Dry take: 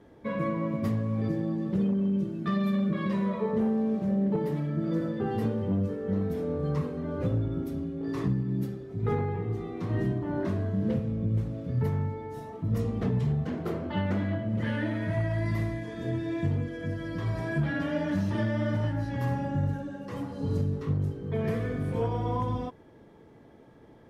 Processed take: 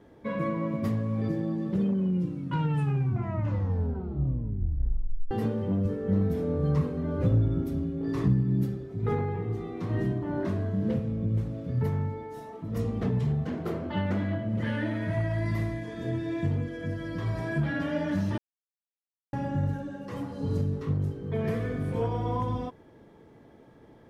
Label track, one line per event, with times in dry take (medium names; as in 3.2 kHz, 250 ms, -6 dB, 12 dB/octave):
1.900000	1.900000	tape stop 3.41 s
5.850000	8.880000	bass shelf 150 Hz +8.5 dB
12.230000	12.760000	peaking EQ 87 Hz -9.5 dB 2 oct
18.380000	19.330000	mute